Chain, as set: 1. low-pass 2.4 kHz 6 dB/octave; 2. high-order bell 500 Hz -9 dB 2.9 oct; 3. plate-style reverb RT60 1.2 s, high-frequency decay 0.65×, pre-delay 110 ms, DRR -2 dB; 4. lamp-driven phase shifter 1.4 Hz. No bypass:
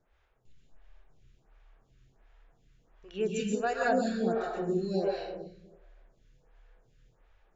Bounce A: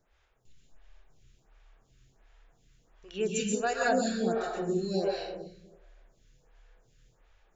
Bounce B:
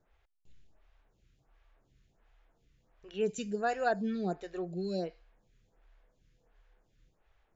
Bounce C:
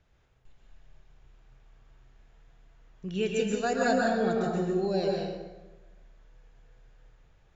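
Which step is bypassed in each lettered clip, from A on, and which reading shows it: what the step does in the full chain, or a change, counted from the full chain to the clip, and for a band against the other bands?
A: 1, 4 kHz band +5.0 dB; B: 3, momentary loudness spread change -7 LU; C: 4, 4 kHz band +2.5 dB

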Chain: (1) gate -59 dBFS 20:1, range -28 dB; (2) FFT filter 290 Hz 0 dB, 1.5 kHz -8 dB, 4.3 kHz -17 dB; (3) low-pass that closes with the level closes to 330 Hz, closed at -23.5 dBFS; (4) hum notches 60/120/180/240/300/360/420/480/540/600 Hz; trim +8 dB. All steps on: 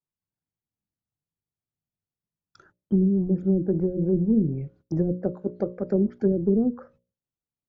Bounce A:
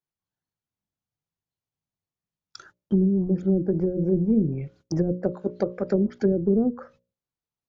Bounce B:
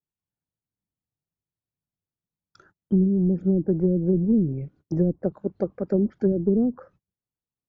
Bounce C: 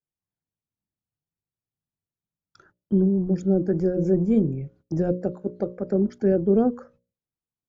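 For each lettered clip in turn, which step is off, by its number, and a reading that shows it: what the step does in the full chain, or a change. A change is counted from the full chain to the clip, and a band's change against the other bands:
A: 2, momentary loudness spread change -1 LU; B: 4, loudness change +1.0 LU; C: 3, momentary loudness spread change +1 LU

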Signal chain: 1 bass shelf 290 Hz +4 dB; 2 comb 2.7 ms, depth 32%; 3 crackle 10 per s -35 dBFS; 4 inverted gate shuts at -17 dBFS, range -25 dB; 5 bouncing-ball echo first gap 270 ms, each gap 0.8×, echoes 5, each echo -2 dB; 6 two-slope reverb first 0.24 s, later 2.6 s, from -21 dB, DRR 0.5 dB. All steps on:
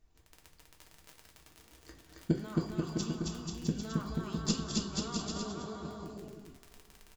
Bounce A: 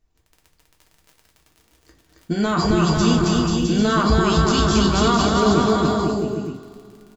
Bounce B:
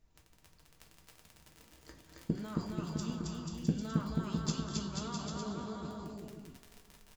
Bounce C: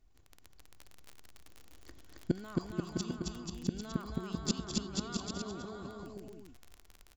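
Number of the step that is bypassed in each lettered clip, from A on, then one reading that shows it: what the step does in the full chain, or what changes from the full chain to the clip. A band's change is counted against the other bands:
4, momentary loudness spread change -9 LU; 2, momentary loudness spread change +2 LU; 6, echo-to-direct 6.0 dB to 2.0 dB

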